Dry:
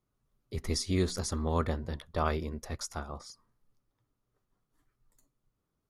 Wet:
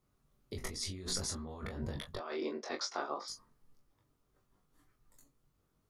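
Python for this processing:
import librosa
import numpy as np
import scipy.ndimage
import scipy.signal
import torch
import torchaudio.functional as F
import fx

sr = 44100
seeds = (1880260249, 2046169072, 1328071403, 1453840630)

y = fx.cheby1_bandpass(x, sr, low_hz=310.0, high_hz=5000.0, order=3, at=(2.16, 3.28))
y = fx.over_compress(y, sr, threshold_db=-39.0, ratio=-1.0)
y = fx.room_early_taps(y, sr, ms=(21, 40), db=(-3.0, -10.5))
y = F.gain(torch.from_numpy(y), -2.5).numpy()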